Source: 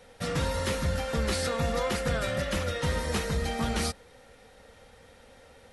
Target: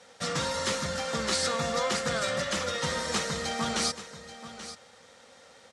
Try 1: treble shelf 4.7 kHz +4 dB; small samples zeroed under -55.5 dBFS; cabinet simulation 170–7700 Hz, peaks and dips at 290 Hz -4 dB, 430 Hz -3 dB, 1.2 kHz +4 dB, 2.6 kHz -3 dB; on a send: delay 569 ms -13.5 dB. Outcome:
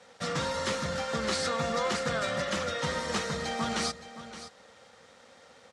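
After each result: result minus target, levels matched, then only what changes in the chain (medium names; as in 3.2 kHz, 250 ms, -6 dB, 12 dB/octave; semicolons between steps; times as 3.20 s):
echo 264 ms early; 8 kHz band -4.0 dB
change: delay 833 ms -13.5 dB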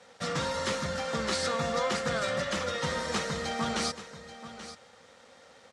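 8 kHz band -4.0 dB
change: treble shelf 4.7 kHz +12 dB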